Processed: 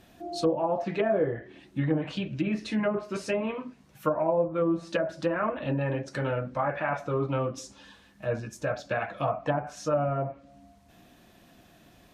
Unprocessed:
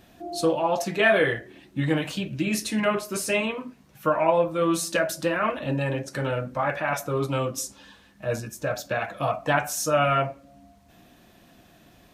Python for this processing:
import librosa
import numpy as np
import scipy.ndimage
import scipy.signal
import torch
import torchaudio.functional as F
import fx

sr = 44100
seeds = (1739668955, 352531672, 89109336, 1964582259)

y = fx.env_lowpass_down(x, sr, base_hz=660.0, full_db=-18.5)
y = y * 10.0 ** (-2.0 / 20.0)